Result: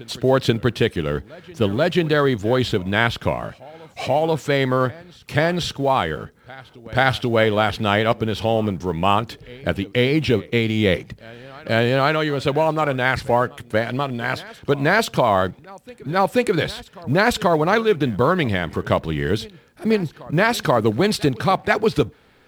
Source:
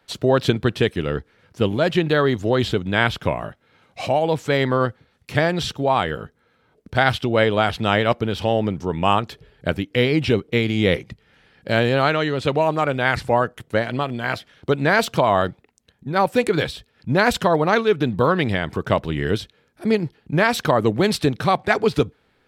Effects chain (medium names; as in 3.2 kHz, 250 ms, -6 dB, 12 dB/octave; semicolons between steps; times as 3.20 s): companding laws mixed up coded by mu; reverse echo 485 ms -22 dB